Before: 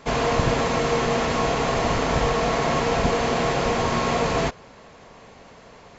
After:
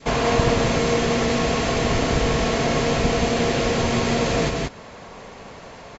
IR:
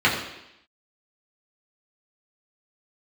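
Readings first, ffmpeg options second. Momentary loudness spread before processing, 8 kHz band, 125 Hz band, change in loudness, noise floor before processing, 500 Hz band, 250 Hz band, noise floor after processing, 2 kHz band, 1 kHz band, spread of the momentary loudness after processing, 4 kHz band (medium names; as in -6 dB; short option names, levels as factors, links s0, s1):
1 LU, no reading, +3.0 dB, +1.5 dB, -48 dBFS, +1.5 dB, +4.0 dB, -41 dBFS, +1.5 dB, -2.0 dB, 20 LU, +3.0 dB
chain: -filter_complex "[0:a]adynamicequalizer=threshold=0.0126:dfrequency=970:dqfactor=0.93:tfrequency=970:tqfactor=0.93:attack=5:release=100:ratio=0.375:range=4:mode=cutabove:tftype=bell,aecho=1:1:179:0.708,asplit=2[s0][s1];[s1]acompressor=threshold=0.0355:ratio=6,volume=0.794[s2];[s0][s2]amix=inputs=2:normalize=0"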